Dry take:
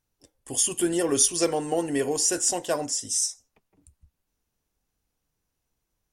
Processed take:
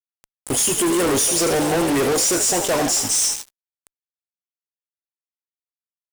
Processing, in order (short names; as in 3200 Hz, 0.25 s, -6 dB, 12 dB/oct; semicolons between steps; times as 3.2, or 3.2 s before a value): whine 840 Hz -58 dBFS; frequency-shifting echo 83 ms, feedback 56%, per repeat +55 Hz, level -14 dB; fuzz box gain 41 dB, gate -38 dBFS; gain -3.5 dB